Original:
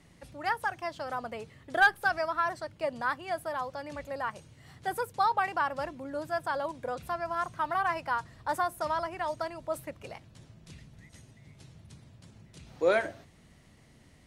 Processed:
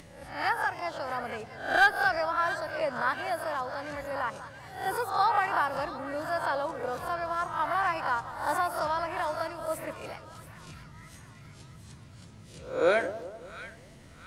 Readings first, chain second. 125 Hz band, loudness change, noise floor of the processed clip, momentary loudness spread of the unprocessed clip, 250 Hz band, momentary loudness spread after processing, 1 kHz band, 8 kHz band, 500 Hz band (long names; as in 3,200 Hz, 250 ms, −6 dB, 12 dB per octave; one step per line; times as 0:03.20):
+2.5 dB, +2.0 dB, −51 dBFS, 14 LU, +1.5 dB, 20 LU, +2.0 dB, +3.5 dB, +2.0 dB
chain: peak hold with a rise ahead of every peak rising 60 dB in 0.49 s
upward compression, threshold −45 dBFS
echo with a time of its own for lows and highs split 1,100 Hz, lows 192 ms, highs 680 ms, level −13 dB